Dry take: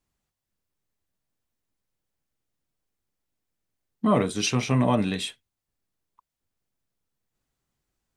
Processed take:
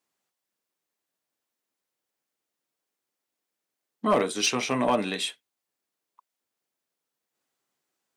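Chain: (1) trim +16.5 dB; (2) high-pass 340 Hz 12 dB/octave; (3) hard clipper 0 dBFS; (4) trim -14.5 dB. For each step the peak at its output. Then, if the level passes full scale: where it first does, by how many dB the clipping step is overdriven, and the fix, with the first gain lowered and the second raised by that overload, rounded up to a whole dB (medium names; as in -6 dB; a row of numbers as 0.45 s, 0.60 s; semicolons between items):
+8.5 dBFS, +5.5 dBFS, 0.0 dBFS, -14.5 dBFS; step 1, 5.5 dB; step 1 +10.5 dB, step 4 -8.5 dB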